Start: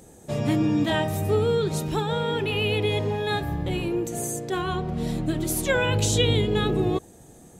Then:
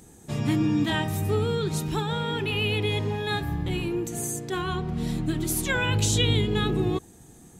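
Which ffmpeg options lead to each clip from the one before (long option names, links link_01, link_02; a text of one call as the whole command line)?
ffmpeg -i in.wav -af "equalizer=frequency=570:width_type=o:width=0.63:gain=-11" out.wav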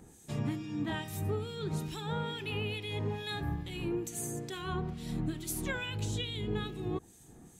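ffmpeg -i in.wav -filter_complex "[0:a]acompressor=threshold=-27dB:ratio=6,acrossover=split=2100[link_01][link_02];[link_01]aeval=exprs='val(0)*(1-0.7/2+0.7/2*cos(2*PI*2.3*n/s))':channel_layout=same[link_03];[link_02]aeval=exprs='val(0)*(1-0.7/2-0.7/2*cos(2*PI*2.3*n/s))':channel_layout=same[link_04];[link_03][link_04]amix=inputs=2:normalize=0,volume=-2dB" out.wav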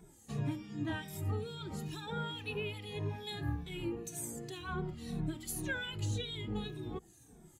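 ffmpeg -i in.wav -filter_complex "[0:a]afftfilt=real='re*pow(10,7/40*sin(2*PI*(1.6*log(max(b,1)*sr/1024/100)/log(2)-(-1.9)*(pts-256)/sr)))':imag='im*pow(10,7/40*sin(2*PI*(1.6*log(max(b,1)*sr/1024/100)/log(2)-(-1.9)*(pts-256)/sr)))':win_size=1024:overlap=0.75,asplit=2[link_01][link_02];[link_02]adelay=2.3,afreqshift=-2.7[link_03];[link_01][link_03]amix=inputs=2:normalize=1,volume=-1dB" out.wav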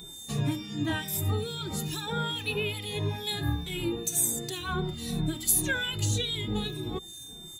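ffmpeg -i in.wav -af "crystalizer=i=2:c=0,aeval=exprs='val(0)+0.00282*sin(2*PI*3600*n/s)':channel_layout=same,volume=7dB" out.wav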